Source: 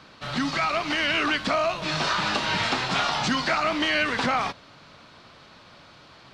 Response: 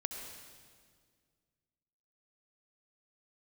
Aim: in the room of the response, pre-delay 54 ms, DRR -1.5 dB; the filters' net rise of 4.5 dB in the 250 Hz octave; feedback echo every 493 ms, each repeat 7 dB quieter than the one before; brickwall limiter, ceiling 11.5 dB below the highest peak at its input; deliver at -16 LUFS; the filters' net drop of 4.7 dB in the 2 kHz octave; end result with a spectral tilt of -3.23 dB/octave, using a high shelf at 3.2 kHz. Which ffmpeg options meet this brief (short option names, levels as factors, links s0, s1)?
-filter_complex "[0:a]equalizer=f=250:t=o:g=5.5,equalizer=f=2000:t=o:g=-4,highshelf=f=3200:g=-6.5,alimiter=limit=0.0708:level=0:latency=1,aecho=1:1:493|986|1479|1972|2465:0.447|0.201|0.0905|0.0407|0.0183,asplit=2[s0][s1];[1:a]atrim=start_sample=2205,adelay=54[s2];[s1][s2]afir=irnorm=-1:irlink=0,volume=1.12[s3];[s0][s3]amix=inputs=2:normalize=0,volume=3.55"